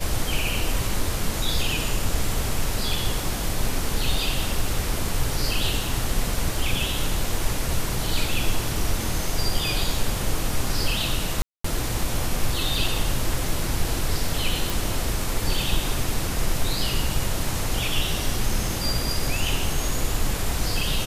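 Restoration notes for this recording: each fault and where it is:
0:11.42–0:11.64: drop-out 224 ms
0:14.70: click

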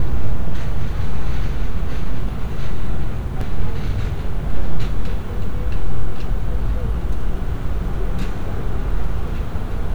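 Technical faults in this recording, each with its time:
0:03.41: drop-out 3.1 ms

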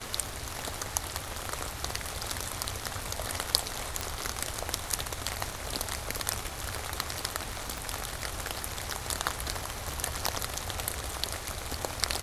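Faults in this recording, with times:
surface crackle 120 per second −42 dBFS
0:04.01: click −14 dBFS
0:07.78: click

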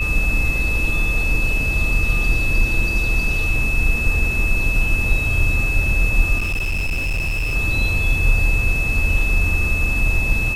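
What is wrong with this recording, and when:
whistle 2,600 Hz −21 dBFS
0:06.38–0:07.56: clipping −18 dBFS

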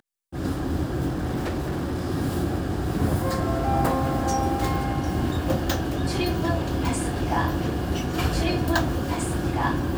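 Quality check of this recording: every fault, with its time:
0:01.09–0:02.07: clipping −23 dBFS

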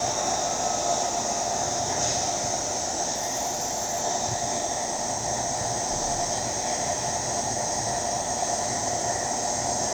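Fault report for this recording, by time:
0:03.14–0:04.03: clipping −23.5 dBFS

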